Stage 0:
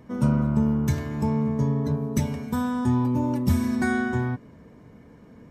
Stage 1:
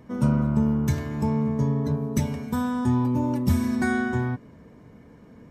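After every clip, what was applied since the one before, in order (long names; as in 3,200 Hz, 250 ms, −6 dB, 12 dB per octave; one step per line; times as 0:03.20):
no processing that can be heard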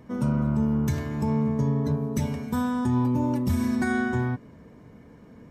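brickwall limiter −16 dBFS, peak gain reduction 5.5 dB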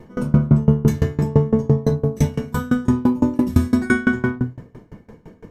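rectangular room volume 36 cubic metres, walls mixed, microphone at 0.84 metres
tremolo with a ramp in dB decaying 5.9 Hz, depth 25 dB
level +7.5 dB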